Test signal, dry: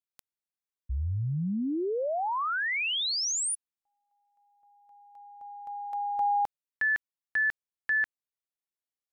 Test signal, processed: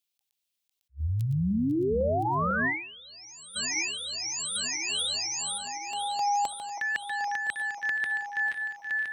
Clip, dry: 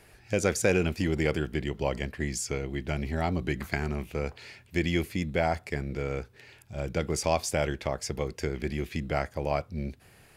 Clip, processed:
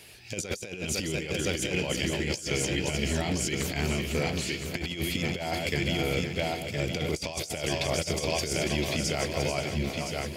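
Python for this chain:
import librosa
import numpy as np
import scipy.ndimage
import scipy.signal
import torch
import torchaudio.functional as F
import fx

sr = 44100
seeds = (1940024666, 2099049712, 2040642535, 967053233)

p1 = fx.reverse_delay_fb(x, sr, ms=251, feedback_pct=72, wet_db=-10.5)
p2 = scipy.signal.sosfilt(scipy.signal.butter(2, 73.0, 'highpass', fs=sr, output='sos'), p1)
p3 = fx.high_shelf_res(p2, sr, hz=2200.0, db=10.0, q=1.5)
p4 = fx.notch(p3, sr, hz=800.0, q=26.0)
p5 = p4 + fx.echo_feedback(p4, sr, ms=1016, feedback_pct=39, wet_db=-7.5, dry=0)
p6 = fx.over_compress(p5, sr, threshold_db=-28.0, ratio=-0.5)
p7 = fx.peak_eq(p6, sr, hz=8600.0, db=-3.0, octaves=2.2)
y = fx.attack_slew(p7, sr, db_per_s=400.0)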